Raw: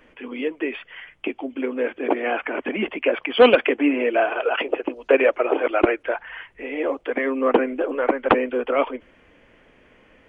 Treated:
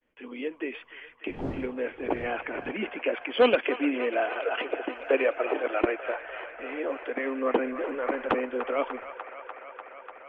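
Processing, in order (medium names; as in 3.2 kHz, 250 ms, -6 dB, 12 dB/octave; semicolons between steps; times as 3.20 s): 1.27–2.70 s: wind noise 350 Hz -28 dBFS; expander -44 dBFS; feedback echo behind a band-pass 296 ms, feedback 82%, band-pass 1.4 kHz, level -10.5 dB; 7.59–8.35 s: transient shaper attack -3 dB, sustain +4 dB; trim -7.5 dB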